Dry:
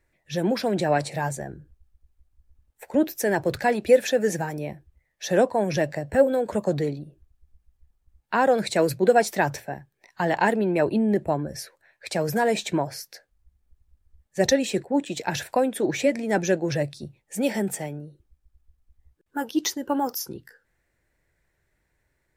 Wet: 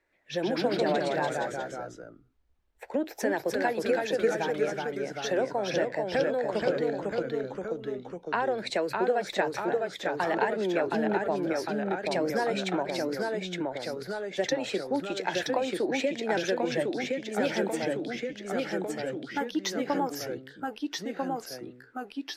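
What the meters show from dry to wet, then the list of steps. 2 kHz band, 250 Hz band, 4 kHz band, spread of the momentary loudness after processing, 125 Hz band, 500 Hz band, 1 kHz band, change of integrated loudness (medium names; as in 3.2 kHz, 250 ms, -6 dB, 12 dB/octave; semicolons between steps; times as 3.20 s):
-2.5 dB, -5.0 dB, -1.5 dB, 8 LU, -9.0 dB, -3.5 dB, -3.5 dB, -5.5 dB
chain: three-band isolator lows -16 dB, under 250 Hz, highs -14 dB, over 5.2 kHz; compression, threshold -25 dBFS, peak gain reduction 13 dB; ever faster or slower copies 112 ms, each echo -1 st, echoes 3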